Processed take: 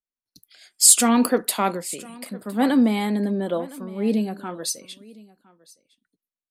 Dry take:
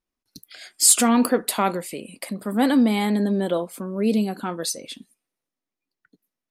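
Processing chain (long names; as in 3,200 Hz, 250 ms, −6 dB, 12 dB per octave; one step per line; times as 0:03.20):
on a send: single-tap delay 1,011 ms −17 dB
on the sum: multiband upward and downward expander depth 40%
level −1.5 dB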